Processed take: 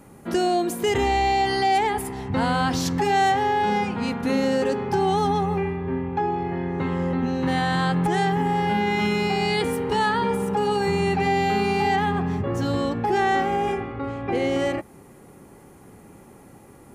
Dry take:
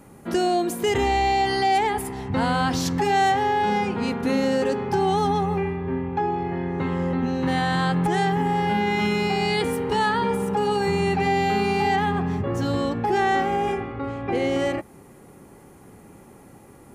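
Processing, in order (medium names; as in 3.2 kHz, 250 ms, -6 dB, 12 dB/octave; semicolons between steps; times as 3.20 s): 3.84–4.30 s: peaking EQ 400 Hz -8 dB 0.35 oct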